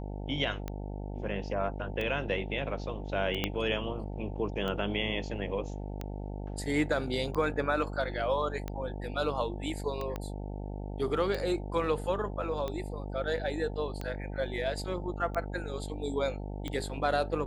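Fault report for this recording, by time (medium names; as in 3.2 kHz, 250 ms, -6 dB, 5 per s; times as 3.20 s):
buzz 50 Hz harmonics 18 -38 dBFS
tick 45 rpm -22 dBFS
3.44 s: pop -14 dBFS
10.16 s: pop -22 dBFS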